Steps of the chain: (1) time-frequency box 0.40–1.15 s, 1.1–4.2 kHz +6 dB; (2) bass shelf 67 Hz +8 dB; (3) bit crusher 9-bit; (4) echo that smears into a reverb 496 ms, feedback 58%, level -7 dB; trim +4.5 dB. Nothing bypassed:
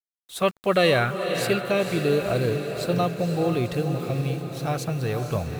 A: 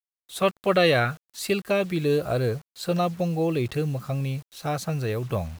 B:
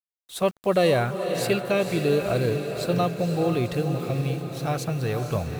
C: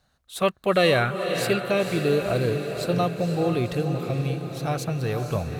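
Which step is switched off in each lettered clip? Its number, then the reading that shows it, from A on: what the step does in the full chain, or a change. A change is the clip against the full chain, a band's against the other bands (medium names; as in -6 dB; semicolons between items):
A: 4, echo-to-direct -5.0 dB to none; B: 1, 2 kHz band -3.5 dB; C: 3, distortion -30 dB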